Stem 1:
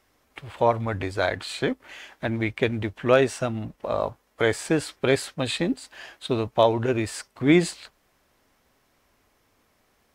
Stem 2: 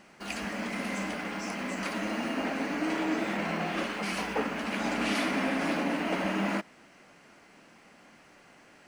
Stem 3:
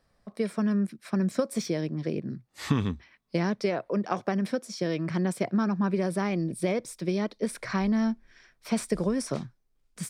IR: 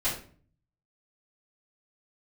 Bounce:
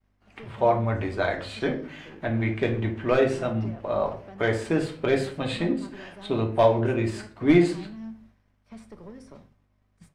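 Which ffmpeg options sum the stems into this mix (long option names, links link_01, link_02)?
-filter_complex "[0:a]volume=9.5dB,asoftclip=hard,volume=-9.5dB,volume=-4.5dB,asplit=2[link_01][link_02];[link_02]volume=-8dB[link_03];[1:a]volume=-14dB[link_04];[2:a]lowshelf=frequency=200:gain=-4,volume=24dB,asoftclip=hard,volume=-24dB,aeval=exprs='val(0)+0.00891*(sin(2*PI*50*n/s)+sin(2*PI*2*50*n/s)/2+sin(2*PI*3*50*n/s)/3+sin(2*PI*4*50*n/s)/4+sin(2*PI*5*50*n/s)/5)':channel_layout=same,volume=-15.5dB,asplit=3[link_05][link_06][link_07];[link_06]volume=-14.5dB[link_08];[link_07]apad=whole_len=391354[link_09];[link_04][link_09]sidechaincompress=threshold=-58dB:ratio=5:attack=5.9:release=145[link_10];[3:a]atrim=start_sample=2205[link_11];[link_03][link_08]amix=inputs=2:normalize=0[link_12];[link_12][link_11]afir=irnorm=-1:irlink=0[link_13];[link_01][link_10][link_05][link_13]amix=inputs=4:normalize=0,lowpass=frequency=2600:poles=1,agate=range=-33dB:threshold=-49dB:ratio=3:detection=peak"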